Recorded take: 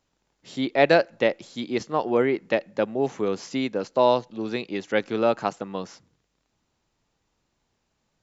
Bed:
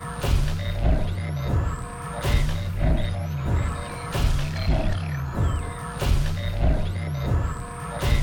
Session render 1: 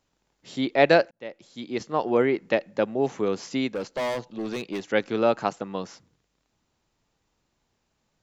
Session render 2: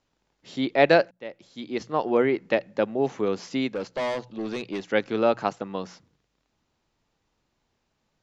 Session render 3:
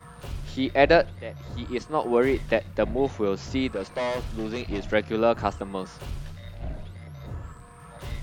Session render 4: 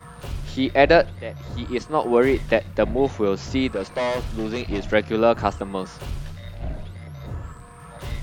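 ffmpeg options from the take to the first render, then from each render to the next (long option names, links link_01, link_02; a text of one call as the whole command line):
ffmpeg -i in.wav -filter_complex "[0:a]asettb=1/sr,asplit=3[link_01][link_02][link_03];[link_01]atrim=end=3.714[link_04];[link_02]atrim=start=3.71:end=4.82,asetpts=PTS-STARTPTS,afade=type=in:duration=0.004:curve=qsin,afade=type=out:start_time=1.106:duration=0.004:curve=qsin,asoftclip=type=hard:threshold=-25dB[link_05];[link_03]atrim=start=4.816[link_06];[link_04][link_05]acrossfade=duration=0.004:curve1=hsin:curve2=qsin[link_07];[link_07][link_06]acrossfade=duration=0.004:curve1=qsin:curve2=hsin,asplit=2[link_08][link_09];[link_08]atrim=end=1.11,asetpts=PTS-STARTPTS,afade=type=out:start_time=1.106:duration=0.004:curve=hsin[link_10];[link_09]atrim=start=1.11,asetpts=PTS-STARTPTS,afade=type=in:duration=0.94[link_11];[link_10][link_11]concat=n=2:v=0:a=1" out.wav
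ffmpeg -i in.wav -af "lowpass=6200,bandreject=frequency=60:width_type=h:width=6,bandreject=frequency=120:width_type=h:width=6,bandreject=frequency=180:width_type=h:width=6" out.wav
ffmpeg -i in.wav -i bed.wav -filter_complex "[1:a]volume=-13.5dB[link_01];[0:a][link_01]amix=inputs=2:normalize=0" out.wav
ffmpeg -i in.wav -af "volume=4dB,alimiter=limit=-2dB:level=0:latency=1" out.wav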